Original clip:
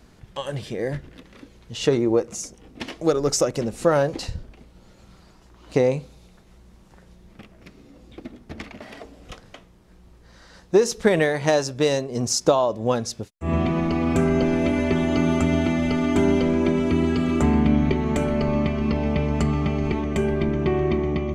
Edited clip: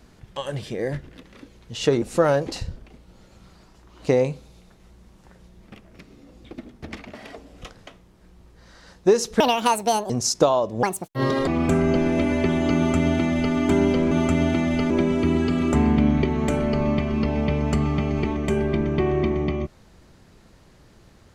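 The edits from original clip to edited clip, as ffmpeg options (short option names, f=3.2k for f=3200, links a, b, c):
-filter_complex "[0:a]asplit=8[a][b][c][d][e][f][g][h];[a]atrim=end=2.022[i];[b]atrim=start=3.688:end=11.074[j];[c]atrim=start=11.07:end=12.16,asetpts=PTS-STARTPTS,asetrate=68796,aresample=44100,atrim=end_sample=30813,asetpts=PTS-STARTPTS[k];[d]atrim=start=12.156:end=12.894[l];[e]atrim=start=12.89:end=13.94,asetpts=PTS-STARTPTS,asetrate=71883,aresample=44100[m];[f]atrim=start=13.936:end=16.582[n];[g]atrim=start=15.228:end=16.022[o];[h]atrim=start=16.578[p];[i][j]acrossfade=d=0.004:c1=hsin:c2=hsin[q];[q][k]acrossfade=d=0.004:c1=hsin:c2=hsin[r];[r][l]acrossfade=d=0.004:c1=hsin:c2=hsin[s];[s][m]acrossfade=d=0.004:c1=hsin:c2=hsin[t];[t][n]acrossfade=d=0.004:c1=hsin:c2=hsin[u];[u][o]acrossfade=d=0.004:c1=hsin:c2=hsin[v];[v][p]acrossfade=d=0.004:c1=hsin:c2=hsin"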